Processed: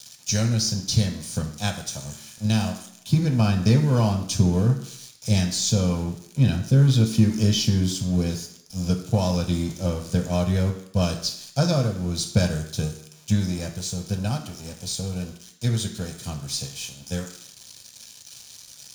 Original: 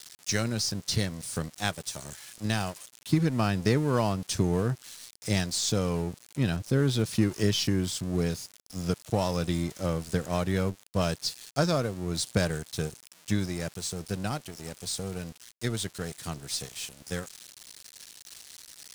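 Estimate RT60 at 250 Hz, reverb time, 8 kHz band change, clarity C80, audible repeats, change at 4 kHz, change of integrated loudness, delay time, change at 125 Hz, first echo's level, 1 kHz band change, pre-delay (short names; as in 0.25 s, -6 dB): 0.65 s, 0.70 s, +5.0 dB, 12.0 dB, none, +4.0 dB, +6.0 dB, none, +8.5 dB, none, +0.5 dB, 3 ms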